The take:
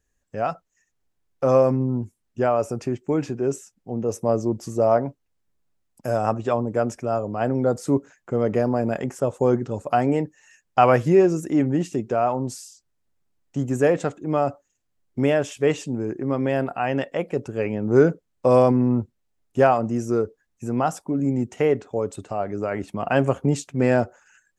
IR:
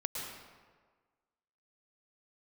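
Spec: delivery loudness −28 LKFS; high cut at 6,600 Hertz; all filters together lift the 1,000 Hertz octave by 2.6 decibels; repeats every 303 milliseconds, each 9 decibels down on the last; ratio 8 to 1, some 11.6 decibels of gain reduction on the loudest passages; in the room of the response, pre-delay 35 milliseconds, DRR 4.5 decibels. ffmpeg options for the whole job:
-filter_complex "[0:a]lowpass=6600,equalizer=frequency=1000:width_type=o:gain=4,acompressor=threshold=-22dB:ratio=8,aecho=1:1:303|606|909|1212:0.355|0.124|0.0435|0.0152,asplit=2[link_01][link_02];[1:a]atrim=start_sample=2205,adelay=35[link_03];[link_02][link_03]afir=irnorm=-1:irlink=0,volume=-7dB[link_04];[link_01][link_04]amix=inputs=2:normalize=0,volume=-1dB"

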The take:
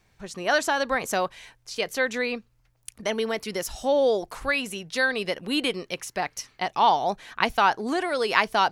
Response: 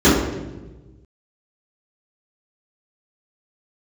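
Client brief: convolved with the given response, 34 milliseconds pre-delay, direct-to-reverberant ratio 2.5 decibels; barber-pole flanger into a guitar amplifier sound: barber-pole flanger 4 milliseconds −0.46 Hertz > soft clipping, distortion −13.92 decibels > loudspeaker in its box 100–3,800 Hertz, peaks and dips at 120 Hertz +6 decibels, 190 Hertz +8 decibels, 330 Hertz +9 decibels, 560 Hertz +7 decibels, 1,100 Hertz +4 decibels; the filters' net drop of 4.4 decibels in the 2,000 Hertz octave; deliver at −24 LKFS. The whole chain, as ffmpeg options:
-filter_complex "[0:a]equalizer=frequency=2000:width_type=o:gain=-6.5,asplit=2[link_01][link_02];[1:a]atrim=start_sample=2205,adelay=34[link_03];[link_02][link_03]afir=irnorm=-1:irlink=0,volume=-29dB[link_04];[link_01][link_04]amix=inputs=2:normalize=0,asplit=2[link_05][link_06];[link_06]adelay=4,afreqshift=-0.46[link_07];[link_05][link_07]amix=inputs=2:normalize=1,asoftclip=threshold=-19.5dB,highpass=100,equalizer=frequency=120:width_type=q:width=4:gain=6,equalizer=frequency=190:width_type=q:width=4:gain=8,equalizer=frequency=330:width_type=q:width=4:gain=9,equalizer=frequency=560:width_type=q:width=4:gain=7,equalizer=frequency=1100:width_type=q:width=4:gain=4,lowpass=frequency=3800:width=0.5412,lowpass=frequency=3800:width=1.3066,volume=-0.5dB"

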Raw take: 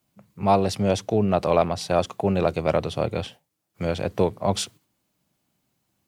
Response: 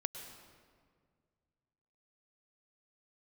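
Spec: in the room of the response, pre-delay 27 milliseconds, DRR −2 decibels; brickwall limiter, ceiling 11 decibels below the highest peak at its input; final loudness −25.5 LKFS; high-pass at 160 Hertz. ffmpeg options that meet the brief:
-filter_complex "[0:a]highpass=160,alimiter=limit=-16dB:level=0:latency=1,asplit=2[link_01][link_02];[1:a]atrim=start_sample=2205,adelay=27[link_03];[link_02][link_03]afir=irnorm=-1:irlink=0,volume=2dB[link_04];[link_01][link_04]amix=inputs=2:normalize=0,volume=-0.5dB"

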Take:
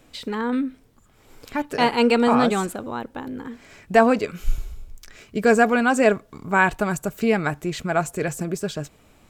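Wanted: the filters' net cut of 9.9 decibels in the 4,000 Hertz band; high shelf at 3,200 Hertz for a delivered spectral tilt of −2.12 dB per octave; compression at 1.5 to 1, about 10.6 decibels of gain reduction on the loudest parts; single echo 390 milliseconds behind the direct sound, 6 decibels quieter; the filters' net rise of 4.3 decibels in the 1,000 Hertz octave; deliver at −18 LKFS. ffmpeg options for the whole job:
ffmpeg -i in.wav -af "equalizer=frequency=1000:width_type=o:gain=7,highshelf=frequency=3200:gain=-8,equalizer=frequency=4000:width_type=o:gain=-9,acompressor=threshold=-39dB:ratio=1.5,aecho=1:1:390:0.501,volume=11dB" out.wav

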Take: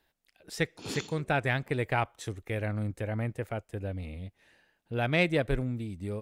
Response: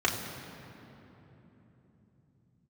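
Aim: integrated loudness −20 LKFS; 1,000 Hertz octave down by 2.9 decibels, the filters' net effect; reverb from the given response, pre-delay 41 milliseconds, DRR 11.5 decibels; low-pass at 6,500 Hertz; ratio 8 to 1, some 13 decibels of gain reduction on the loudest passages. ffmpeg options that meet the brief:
-filter_complex "[0:a]lowpass=6500,equalizer=frequency=1000:width_type=o:gain=-4.5,acompressor=threshold=-35dB:ratio=8,asplit=2[link_01][link_02];[1:a]atrim=start_sample=2205,adelay=41[link_03];[link_02][link_03]afir=irnorm=-1:irlink=0,volume=-23.5dB[link_04];[link_01][link_04]amix=inputs=2:normalize=0,volume=20.5dB"

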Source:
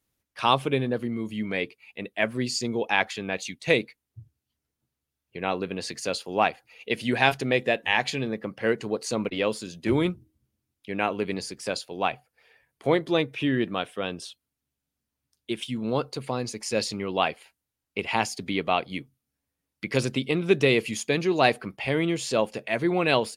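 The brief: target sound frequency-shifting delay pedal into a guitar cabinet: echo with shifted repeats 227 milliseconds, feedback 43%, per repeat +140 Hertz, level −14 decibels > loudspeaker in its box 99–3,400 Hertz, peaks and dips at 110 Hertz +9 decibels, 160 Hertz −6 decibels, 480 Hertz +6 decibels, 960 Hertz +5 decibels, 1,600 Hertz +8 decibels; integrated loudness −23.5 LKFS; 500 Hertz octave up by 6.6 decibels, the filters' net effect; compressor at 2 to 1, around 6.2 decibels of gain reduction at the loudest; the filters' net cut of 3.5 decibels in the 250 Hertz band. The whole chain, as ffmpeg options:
ffmpeg -i in.wav -filter_complex "[0:a]equalizer=frequency=250:width_type=o:gain=-8,equalizer=frequency=500:width_type=o:gain=5.5,acompressor=threshold=-25dB:ratio=2,asplit=5[link_01][link_02][link_03][link_04][link_05];[link_02]adelay=227,afreqshift=140,volume=-14dB[link_06];[link_03]adelay=454,afreqshift=280,volume=-21.3dB[link_07];[link_04]adelay=681,afreqshift=420,volume=-28.7dB[link_08];[link_05]adelay=908,afreqshift=560,volume=-36dB[link_09];[link_01][link_06][link_07][link_08][link_09]amix=inputs=5:normalize=0,highpass=99,equalizer=frequency=110:width_type=q:width=4:gain=9,equalizer=frequency=160:width_type=q:width=4:gain=-6,equalizer=frequency=480:width_type=q:width=4:gain=6,equalizer=frequency=960:width_type=q:width=4:gain=5,equalizer=frequency=1600:width_type=q:width=4:gain=8,lowpass=frequency=3400:width=0.5412,lowpass=frequency=3400:width=1.3066,volume=3dB" out.wav

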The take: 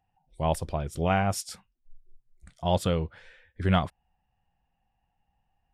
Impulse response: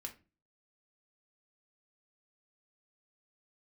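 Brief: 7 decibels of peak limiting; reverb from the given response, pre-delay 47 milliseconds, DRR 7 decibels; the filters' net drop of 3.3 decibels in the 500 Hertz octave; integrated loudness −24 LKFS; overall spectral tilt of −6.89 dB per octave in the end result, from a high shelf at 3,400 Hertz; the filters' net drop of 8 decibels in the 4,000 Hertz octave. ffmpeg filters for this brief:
-filter_complex "[0:a]equalizer=frequency=500:width_type=o:gain=-4,highshelf=frequency=3400:gain=-9,equalizer=frequency=4000:width_type=o:gain=-5,alimiter=limit=-20.5dB:level=0:latency=1,asplit=2[link_01][link_02];[1:a]atrim=start_sample=2205,adelay=47[link_03];[link_02][link_03]afir=irnorm=-1:irlink=0,volume=-3.5dB[link_04];[link_01][link_04]amix=inputs=2:normalize=0,volume=8.5dB"

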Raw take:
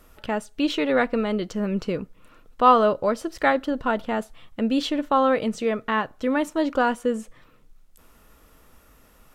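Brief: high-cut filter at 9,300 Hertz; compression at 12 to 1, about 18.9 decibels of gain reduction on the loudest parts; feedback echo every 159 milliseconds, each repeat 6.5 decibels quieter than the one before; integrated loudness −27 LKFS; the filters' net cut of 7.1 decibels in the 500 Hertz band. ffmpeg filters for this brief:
ffmpeg -i in.wav -af "lowpass=9300,equalizer=frequency=500:width_type=o:gain=-8.5,acompressor=threshold=-31dB:ratio=12,aecho=1:1:159|318|477|636|795|954:0.473|0.222|0.105|0.0491|0.0231|0.0109,volume=8.5dB" out.wav

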